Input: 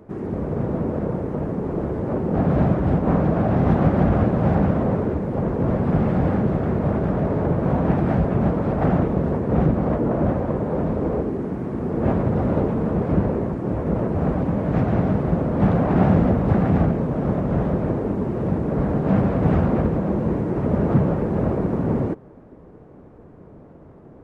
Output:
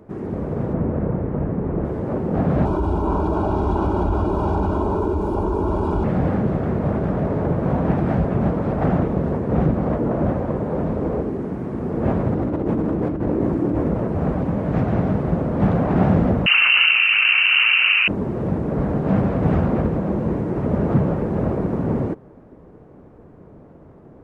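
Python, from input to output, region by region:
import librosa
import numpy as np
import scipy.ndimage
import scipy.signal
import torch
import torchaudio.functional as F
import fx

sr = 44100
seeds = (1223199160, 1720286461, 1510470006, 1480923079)

y = fx.chain(x, sr, fx.cheby1_lowpass(hz=2200.0, order=2),
    fx.low_shelf(hz=160.0, db=8.0), at=(0.73, 1.85))
y = fx.chain(y, sr, fx.fixed_phaser(hz=510.0, stages=6),
    fx.comb(ms=2.1, depth=0.67),
    fx.env_flatten(amount_pct=70), at=(2.65, 6.04))
y = fx.chain(y, sr, fx.peak_eq(hz=310.0, db=10.5, octaves=0.37),
    fx.over_compress(threshold_db=-21.0, ratio=-1.0), at=(12.33, 13.88))
y = fx.chain(y, sr, fx.peak_eq(hz=1600.0, db=11.0, octaves=0.63),
    fx.freq_invert(carrier_hz=2900),
    fx.env_flatten(amount_pct=70), at=(16.46, 18.08))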